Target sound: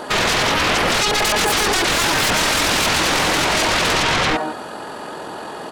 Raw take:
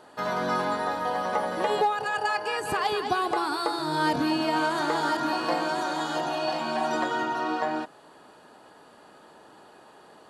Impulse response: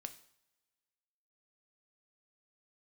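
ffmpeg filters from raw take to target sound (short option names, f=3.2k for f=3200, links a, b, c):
-filter_complex "[0:a]asplit=2[a][b];[b]adelay=291.5,volume=-16dB,highshelf=f=4k:g=-6.56[c];[a][c]amix=inputs=2:normalize=0,aeval=exprs='0.211*sin(PI/2*7.94*val(0)/0.211)':c=same,atempo=1.8"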